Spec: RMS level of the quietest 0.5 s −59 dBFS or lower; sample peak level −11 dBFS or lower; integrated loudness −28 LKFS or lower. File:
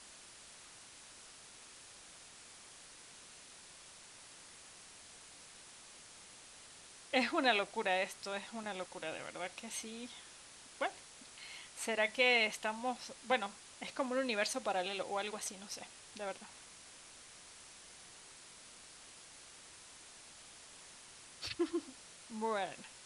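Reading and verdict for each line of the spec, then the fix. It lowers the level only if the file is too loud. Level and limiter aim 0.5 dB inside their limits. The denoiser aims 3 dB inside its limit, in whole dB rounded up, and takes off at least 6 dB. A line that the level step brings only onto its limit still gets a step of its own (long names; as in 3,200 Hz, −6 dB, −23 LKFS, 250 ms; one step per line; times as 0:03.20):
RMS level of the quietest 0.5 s −56 dBFS: out of spec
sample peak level −16.5 dBFS: in spec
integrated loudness −37.0 LKFS: in spec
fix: broadband denoise 6 dB, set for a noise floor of −56 dBFS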